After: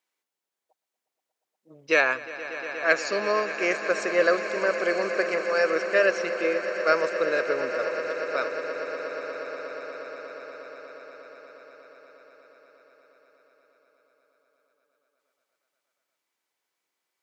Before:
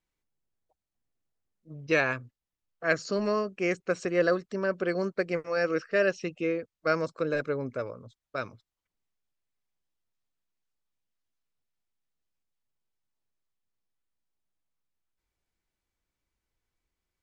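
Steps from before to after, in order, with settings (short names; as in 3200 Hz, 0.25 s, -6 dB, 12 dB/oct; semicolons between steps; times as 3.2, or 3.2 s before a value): HPF 480 Hz 12 dB/oct; on a send: swelling echo 0.119 s, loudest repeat 8, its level -15.5 dB; on the sum: gain +5.5 dB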